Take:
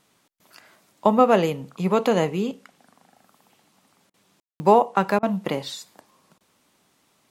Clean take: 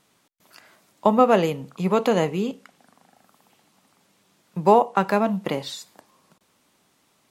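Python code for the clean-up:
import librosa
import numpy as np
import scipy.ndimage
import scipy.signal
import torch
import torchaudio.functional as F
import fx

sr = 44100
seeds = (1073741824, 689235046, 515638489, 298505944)

y = fx.fix_ambience(x, sr, seeds[0], print_start_s=6.38, print_end_s=6.88, start_s=4.4, end_s=4.6)
y = fx.fix_interpolate(y, sr, at_s=(4.1, 4.42, 5.19), length_ms=38.0)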